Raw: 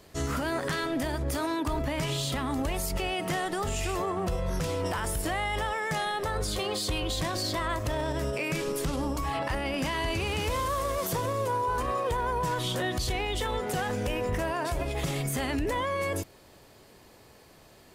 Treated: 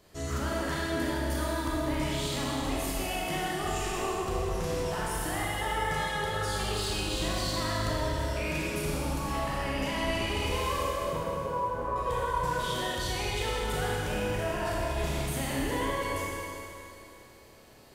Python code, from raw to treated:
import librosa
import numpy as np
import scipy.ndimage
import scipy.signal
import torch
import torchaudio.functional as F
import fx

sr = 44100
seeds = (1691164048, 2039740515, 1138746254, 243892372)

y = fx.lowpass(x, sr, hz=1200.0, slope=12, at=(10.83, 11.96))
y = fx.rev_schroeder(y, sr, rt60_s=2.8, comb_ms=26, drr_db=-5.5)
y = y * librosa.db_to_amplitude(-7.0)